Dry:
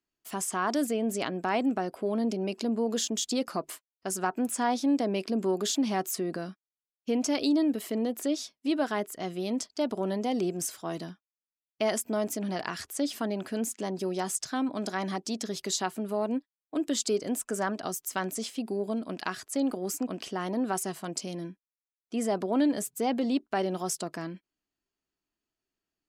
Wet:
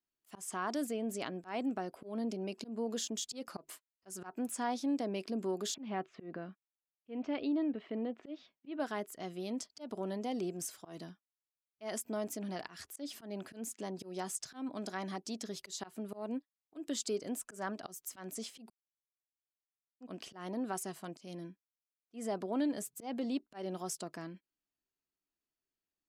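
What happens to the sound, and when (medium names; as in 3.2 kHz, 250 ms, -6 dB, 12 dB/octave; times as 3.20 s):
5.74–8.80 s: low-pass 3 kHz 24 dB/octave
18.70–20.00 s: mute
whole clip: slow attack 147 ms; trim -8 dB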